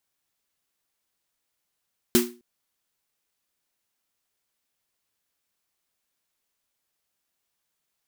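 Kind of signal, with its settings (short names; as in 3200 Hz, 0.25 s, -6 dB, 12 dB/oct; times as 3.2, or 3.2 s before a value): snare drum length 0.26 s, tones 240 Hz, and 360 Hz, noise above 880 Hz, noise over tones -3 dB, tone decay 0.34 s, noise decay 0.27 s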